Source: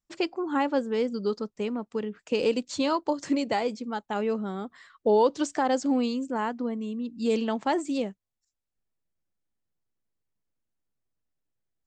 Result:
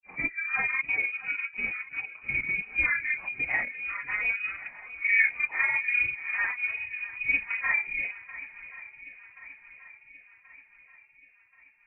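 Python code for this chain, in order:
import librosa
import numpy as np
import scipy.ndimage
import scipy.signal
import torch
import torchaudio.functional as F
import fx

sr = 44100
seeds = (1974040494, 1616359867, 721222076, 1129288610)

y = fx.phase_scramble(x, sr, seeds[0], window_ms=100)
y = fx.step_gate(y, sr, bpm=168, pattern='xxxxxxxxx.xxx.', floor_db=-12.0, edge_ms=4.5)
y = fx.granulator(y, sr, seeds[1], grain_ms=100.0, per_s=20.0, spray_ms=19.0, spread_st=0)
y = fx.echo_swing(y, sr, ms=1080, ratio=1.5, feedback_pct=51, wet_db=-16.5)
y = fx.freq_invert(y, sr, carrier_hz=2700)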